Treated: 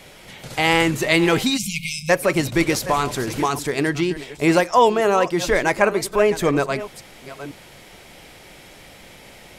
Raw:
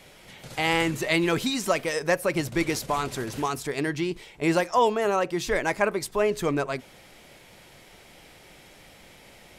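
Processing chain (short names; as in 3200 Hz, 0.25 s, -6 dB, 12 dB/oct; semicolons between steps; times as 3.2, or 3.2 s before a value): reverse delay 0.501 s, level -14 dB; spectral delete 1.57–2.09, 220–2100 Hz; gain +6.5 dB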